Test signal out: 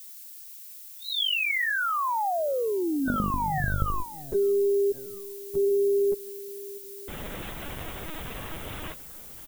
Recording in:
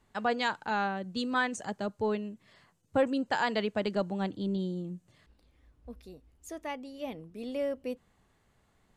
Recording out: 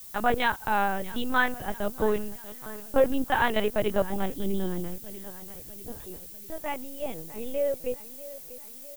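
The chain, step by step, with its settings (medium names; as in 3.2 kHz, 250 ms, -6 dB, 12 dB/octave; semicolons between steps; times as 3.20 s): feedback delay 644 ms, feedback 54%, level -16.5 dB; LPC vocoder at 8 kHz pitch kept; added noise violet -50 dBFS; trim +5.5 dB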